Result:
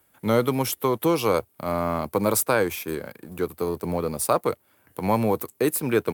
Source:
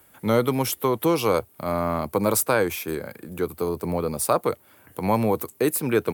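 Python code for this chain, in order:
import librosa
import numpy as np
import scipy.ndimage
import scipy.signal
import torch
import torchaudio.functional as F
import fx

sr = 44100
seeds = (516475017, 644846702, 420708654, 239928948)

y = fx.law_mismatch(x, sr, coded='A')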